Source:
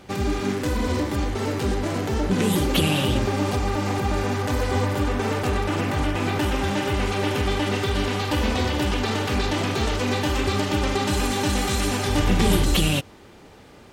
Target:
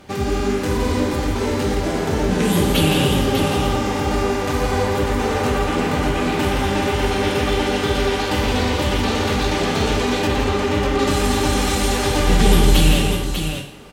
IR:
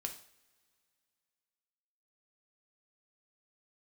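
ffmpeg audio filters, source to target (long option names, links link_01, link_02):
-filter_complex "[1:a]atrim=start_sample=2205,asetrate=33075,aresample=44100[link_01];[0:a][link_01]afir=irnorm=-1:irlink=0,asettb=1/sr,asplit=3[link_02][link_03][link_04];[link_02]atrim=end=10.274[link_05];[link_03]atrim=start=10.27:end=10.99,asetpts=PTS-STARTPTS,afade=type=in:duration=0.004:curve=qsin,afade=type=out:start_time=0.716:duration=0.004:curve=qsin,acrossover=split=2900[link_06][link_07];[link_07]acompressor=threshold=-41dB:ratio=4:attack=1:release=60[link_08];[link_06][link_08]amix=inputs=2:normalize=0[link_09];[link_04]atrim=start=10.986[link_10];[link_05][link_09]acrossfade=duration=0.004:curve1=hsin:curve2=qsin[link_11];[link_11][link_10]acrossfade=duration=0.004:curve1=qsin:curve2=hsin,aecho=1:1:168|596:0.473|0.473,volume=2.5dB"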